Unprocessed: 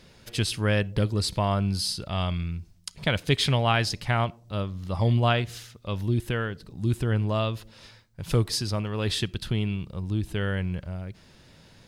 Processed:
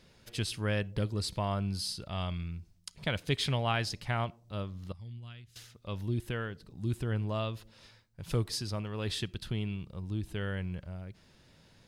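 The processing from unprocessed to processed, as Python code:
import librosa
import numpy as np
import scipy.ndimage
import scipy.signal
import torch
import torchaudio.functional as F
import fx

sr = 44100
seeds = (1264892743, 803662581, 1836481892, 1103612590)

y = fx.tone_stack(x, sr, knobs='6-0-2', at=(4.92, 5.56))
y = y * librosa.db_to_amplitude(-7.5)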